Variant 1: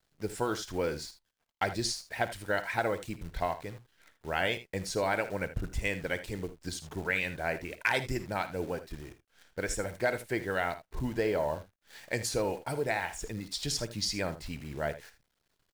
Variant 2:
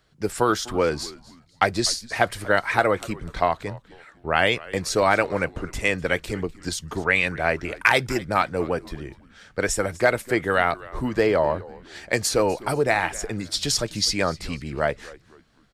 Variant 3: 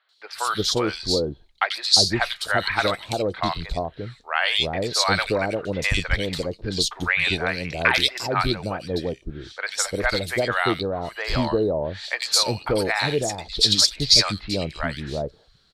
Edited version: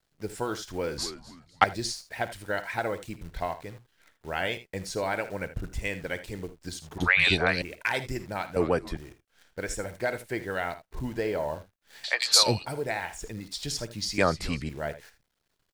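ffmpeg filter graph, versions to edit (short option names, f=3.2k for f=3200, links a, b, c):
-filter_complex "[1:a]asplit=3[a][b][c];[2:a]asplit=2[d][e];[0:a]asplit=6[f][g][h][i][j][k];[f]atrim=end=0.982[l];[a]atrim=start=0.978:end=1.642[m];[g]atrim=start=1.638:end=6.982[n];[d]atrim=start=6.978:end=7.622[o];[h]atrim=start=7.618:end=8.562[p];[b]atrim=start=8.558:end=8.972[q];[i]atrim=start=8.968:end=12.042[r];[e]atrim=start=12.038:end=12.662[s];[j]atrim=start=12.658:end=14.182[t];[c]atrim=start=14.178:end=14.692[u];[k]atrim=start=14.688[v];[l][m]acrossfade=d=0.004:c1=hsin:c2=hsin[w];[w][n]acrossfade=d=0.004:c1=hsin:c2=hsin[x];[x][o]acrossfade=d=0.004:c1=hsin:c2=hsin[y];[y][p]acrossfade=d=0.004:c1=hsin:c2=hsin[z];[z][q]acrossfade=d=0.004:c1=hsin:c2=hsin[aa];[aa][r]acrossfade=d=0.004:c1=hsin:c2=hsin[ab];[ab][s]acrossfade=d=0.004:c1=hsin:c2=hsin[ac];[ac][t]acrossfade=d=0.004:c1=hsin:c2=hsin[ad];[ad][u]acrossfade=d=0.004:c1=hsin:c2=hsin[ae];[ae][v]acrossfade=d=0.004:c1=hsin:c2=hsin"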